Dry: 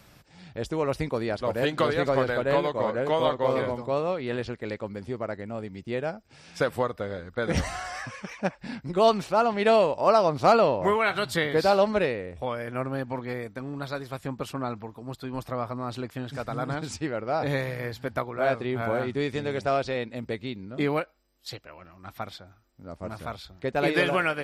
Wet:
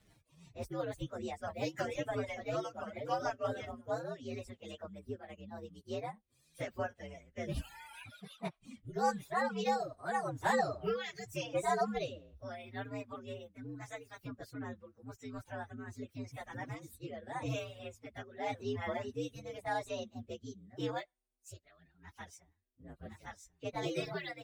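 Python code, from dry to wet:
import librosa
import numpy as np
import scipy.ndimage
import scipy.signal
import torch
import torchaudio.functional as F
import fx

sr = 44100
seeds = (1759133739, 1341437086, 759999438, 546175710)

y = fx.partial_stretch(x, sr, pct=119)
y = fx.dereverb_blind(y, sr, rt60_s=1.8)
y = fx.rotary_switch(y, sr, hz=6.0, then_hz=0.85, switch_at_s=3.34)
y = y * 10.0 ** (-6.0 / 20.0)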